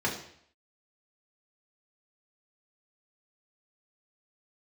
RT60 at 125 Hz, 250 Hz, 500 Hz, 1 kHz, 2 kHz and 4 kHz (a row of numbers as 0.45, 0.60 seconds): 0.70, 0.60, 0.65, 0.65, 0.65, 0.65 seconds